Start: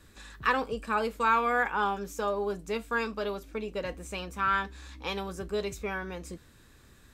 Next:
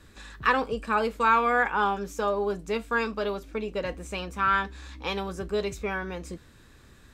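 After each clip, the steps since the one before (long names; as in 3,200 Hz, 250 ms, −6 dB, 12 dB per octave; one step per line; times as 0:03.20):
high-shelf EQ 8,900 Hz −8 dB
level +3.5 dB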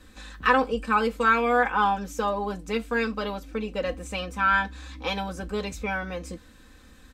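comb filter 3.9 ms, depth 79%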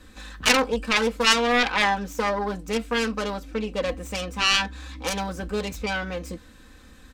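phase distortion by the signal itself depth 0.57 ms
level +2.5 dB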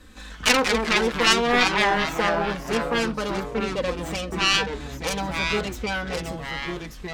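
delay with pitch and tempo change per echo 101 ms, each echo −3 semitones, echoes 3, each echo −6 dB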